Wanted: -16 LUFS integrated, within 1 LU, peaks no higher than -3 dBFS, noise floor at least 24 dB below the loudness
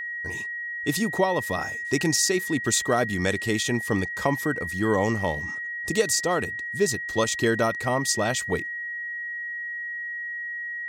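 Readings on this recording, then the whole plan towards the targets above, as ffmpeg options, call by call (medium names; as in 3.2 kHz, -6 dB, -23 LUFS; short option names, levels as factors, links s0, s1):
steady tone 1.9 kHz; tone level -30 dBFS; loudness -25.5 LUFS; peak level -9.0 dBFS; loudness target -16.0 LUFS
-> -af "bandreject=f=1900:w=30"
-af "volume=2.99,alimiter=limit=0.708:level=0:latency=1"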